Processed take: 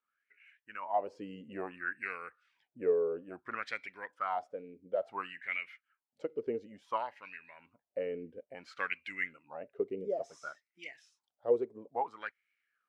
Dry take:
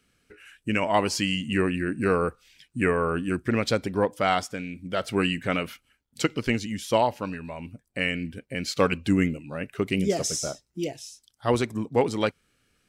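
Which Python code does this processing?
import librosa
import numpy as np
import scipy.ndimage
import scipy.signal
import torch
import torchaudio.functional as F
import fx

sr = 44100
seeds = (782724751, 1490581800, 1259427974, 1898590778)

y = fx.filter_lfo_bandpass(x, sr, shape='sine', hz=0.58, low_hz=430.0, high_hz=2200.0, q=7.1)
y = fx.rider(y, sr, range_db=4, speed_s=0.5)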